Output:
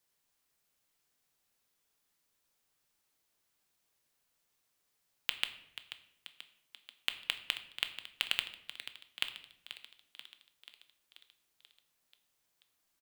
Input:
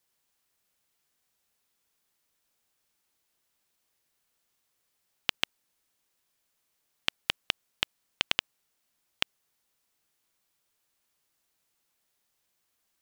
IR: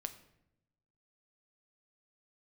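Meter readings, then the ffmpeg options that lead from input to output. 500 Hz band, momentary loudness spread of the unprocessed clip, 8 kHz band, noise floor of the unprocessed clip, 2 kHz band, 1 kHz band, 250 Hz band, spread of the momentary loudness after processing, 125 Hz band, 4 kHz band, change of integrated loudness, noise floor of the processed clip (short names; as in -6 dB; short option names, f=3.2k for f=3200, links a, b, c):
-11.5 dB, 5 LU, -4.5 dB, -78 dBFS, -4.0 dB, -8.0 dB, -13.0 dB, 21 LU, -13.0 dB, -3.5 dB, -5.5 dB, -80 dBFS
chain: -filter_complex "[0:a]asplit=2[a][b];[b]aeval=exprs='(mod(1.88*val(0)+1,2)-1)/1.88':c=same,volume=-6dB[c];[a][c]amix=inputs=2:normalize=0,asplit=8[d][e][f][g][h][i][j][k];[e]adelay=485,afreqshift=65,volume=-12.5dB[l];[f]adelay=970,afreqshift=130,volume=-16.7dB[m];[g]adelay=1455,afreqshift=195,volume=-20.8dB[n];[h]adelay=1940,afreqshift=260,volume=-25dB[o];[i]adelay=2425,afreqshift=325,volume=-29.1dB[p];[j]adelay=2910,afreqshift=390,volume=-33.3dB[q];[k]adelay=3395,afreqshift=455,volume=-37.4dB[r];[d][l][m][n][o][p][q][r]amix=inputs=8:normalize=0[s];[1:a]atrim=start_sample=2205[t];[s][t]afir=irnorm=-1:irlink=0,volume=-3.5dB"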